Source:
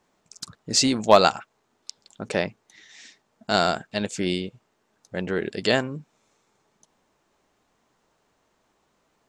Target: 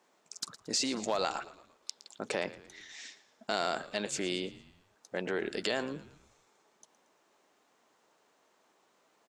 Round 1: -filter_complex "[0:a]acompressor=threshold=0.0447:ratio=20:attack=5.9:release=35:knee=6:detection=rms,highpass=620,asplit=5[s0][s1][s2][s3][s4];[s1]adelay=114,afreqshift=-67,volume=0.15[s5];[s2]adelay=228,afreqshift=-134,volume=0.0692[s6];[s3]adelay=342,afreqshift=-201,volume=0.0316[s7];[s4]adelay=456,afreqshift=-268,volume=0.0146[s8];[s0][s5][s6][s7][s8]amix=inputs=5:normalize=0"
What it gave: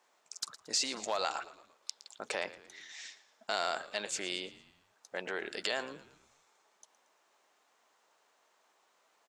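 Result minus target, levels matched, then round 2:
250 Hz band -8.5 dB
-filter_complex "[0:a]acompressor=threshold=0.0447:ratio=20:attack=5.9:release=35:knee=6:detection=rms,highpass=300,asplit=5[s0][s1][s2][s3][s4];[s1]adelay=114,afreqshift=-67,volume=0.15[s5];[s2]adelay=228,afreqshift=-134,volume=0.0692[s6];[s3]adelay=342,afreqshift=-201,volume=0.0316[s7];[s4]adelay=456,afreqshift=-268,volume=0.0146[s8];[s0][s5][s6][s7][s8]amix=inputs=5:normalize=0"

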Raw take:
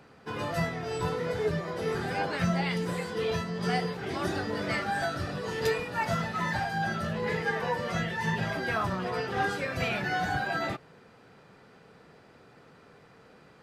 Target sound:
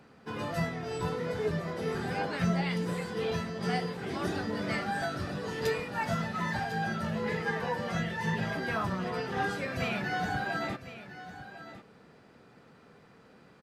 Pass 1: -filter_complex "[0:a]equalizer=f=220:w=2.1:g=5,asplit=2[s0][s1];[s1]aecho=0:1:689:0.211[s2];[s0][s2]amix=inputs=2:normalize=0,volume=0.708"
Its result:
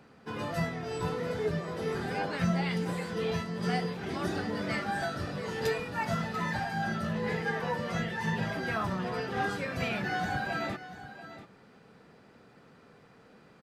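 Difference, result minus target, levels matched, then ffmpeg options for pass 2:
echo 363 ms early
-filter_complex "[0:a]equalizer=f=220:w=2.1:g=5,asplit=2[s0][s1];[s1]aecho=0:1:1052:0.211[s2];[s0][s2]amix=inputs=2:normalize=0,volume=0.708"

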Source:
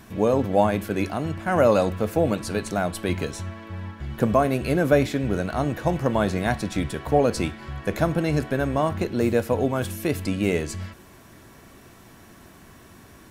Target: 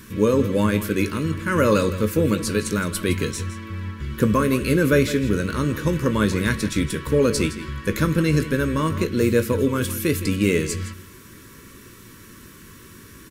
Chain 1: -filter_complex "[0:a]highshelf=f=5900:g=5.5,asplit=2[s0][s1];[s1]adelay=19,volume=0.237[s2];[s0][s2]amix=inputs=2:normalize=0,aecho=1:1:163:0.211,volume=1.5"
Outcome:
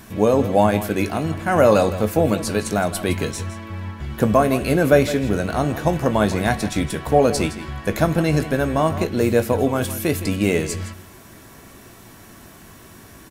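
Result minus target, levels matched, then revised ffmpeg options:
1 kHz band +5.0 dB
-filter_complex "[0:a]asuperstop=centerf=730:order=4:qfactor=1.4,highshelf=f=5900:g=5.5,asplit=2[s0][s1];[s1]adelay=19,volume=0.237[s2];[s0][s2]amix=inputs=2:normalize=0,aecho=1:1:163:0.211,volume=1.5"

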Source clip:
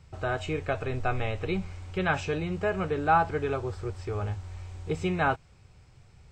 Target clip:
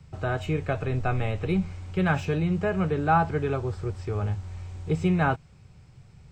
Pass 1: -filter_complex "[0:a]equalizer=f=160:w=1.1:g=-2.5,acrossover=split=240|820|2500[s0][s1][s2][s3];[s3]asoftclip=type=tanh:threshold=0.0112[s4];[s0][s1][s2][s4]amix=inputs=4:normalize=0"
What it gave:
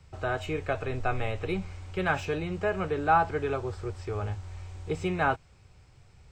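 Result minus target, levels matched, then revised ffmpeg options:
125 Hz band -4.5 dB
-filter_complex "[0:a]equalizer=f=160:w=1.1:g=8.5,acrossover=split=240|820|2500[s0][s1][s2][s3];[s3]asoftclip=type=tanh:threshold=0.0112[s4];[s0][s1][s2][s4]amix=inputs=4:normalize=0"

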